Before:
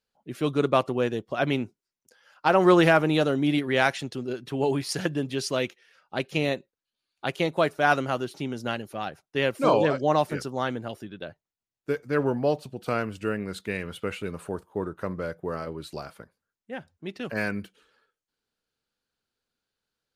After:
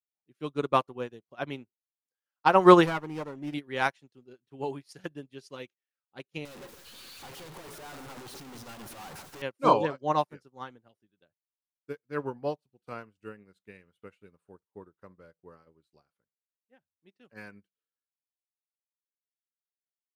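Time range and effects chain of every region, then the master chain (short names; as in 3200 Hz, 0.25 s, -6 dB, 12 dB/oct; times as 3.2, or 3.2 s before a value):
2.86–3.54 tube stage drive 13 dB, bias 0.3 + Butterworth band-stop 3800 Hz, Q 4.9 + running maximum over 9 samples
6.45–9.42 infinite clipping + echo with dull and thin repeats by turns 0.138 s, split 2000 Hz, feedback 57%, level -8 dB
whole clip: notch 640 Hz, Q 12; dynamic EQ 1000 Hz, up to +6 dB, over -39 dBFS, Q 2.9; upward expander 2.5:1, over -41 dBFS; gain +3.5 dB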